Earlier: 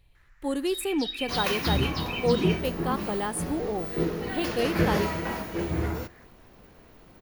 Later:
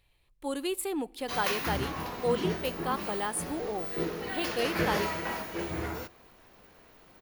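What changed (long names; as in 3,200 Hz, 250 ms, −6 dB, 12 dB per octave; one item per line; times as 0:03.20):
first sound: muted
master: add low-shelf EQ 370 Hz −10 dB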